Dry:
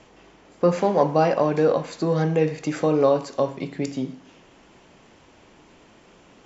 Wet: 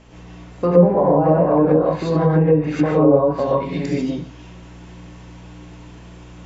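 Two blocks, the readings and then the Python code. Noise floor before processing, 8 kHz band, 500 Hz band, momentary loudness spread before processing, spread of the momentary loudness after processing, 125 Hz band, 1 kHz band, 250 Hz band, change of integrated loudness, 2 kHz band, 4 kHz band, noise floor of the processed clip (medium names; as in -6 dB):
-53 dBFS, no reading, +5.0 dB, 9 LU, 9 LU, +8.0 dB, +3.0 dB, +7.5 dB, +5.5 dB, +1.0 dB, -0.5 dB, -40 dBFS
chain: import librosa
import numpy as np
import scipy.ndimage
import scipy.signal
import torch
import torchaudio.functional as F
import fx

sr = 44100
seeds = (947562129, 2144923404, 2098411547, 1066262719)

y = fx.add_hum(x, sr, base_hz=60, snr_db=23)
y = fx.rev_gated(y, sr, seeds[0], gate_ms=170, shape='rising', drr_db=-6.5)
y = fx.env_lowpass_down(y, sr, base_hz=730.0, full_db=-8.5)
y = F.gain(torch.from_numpy(y), -1.0).numpy()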